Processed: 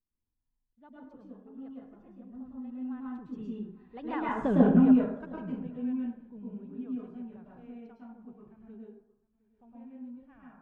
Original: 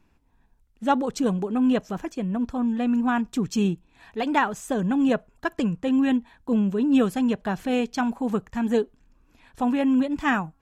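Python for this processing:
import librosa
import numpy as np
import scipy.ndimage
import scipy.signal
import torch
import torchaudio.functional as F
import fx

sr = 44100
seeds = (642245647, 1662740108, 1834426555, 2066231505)

p1 = fx.doppler_pass(x, sr, speed_mps=19, closest_m=2.1, pass_at_s=4.51)
p2 = scipy.signal.sosfilt(scipy.signal.butter(2, 3100.0, 'lowpass', fs=sr, output='sos'), p1)
p3 = fx.tilt_eq(p2, sr, slope=-2.0)
p4 = p3 + fx.echo_single(p3, sr, ms=711, db=-24.0, dry=0)
p5 = fx.rev_plate(p4, sr, seeds[0], rt60_s=0.67, hf_ratio=0.55, predelay_ms=95, drr_db=-4.5)
y = F.gain(torch.from_numpy(p5), -5.5).numpy()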